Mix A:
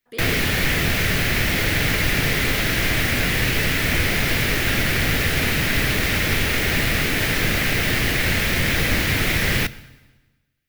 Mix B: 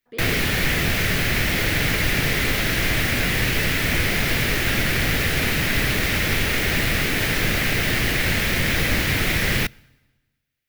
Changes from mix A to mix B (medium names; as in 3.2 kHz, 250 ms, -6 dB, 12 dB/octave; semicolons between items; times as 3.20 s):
speech: add tape spacing loss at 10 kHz 22 dB; background: send -10.5 dB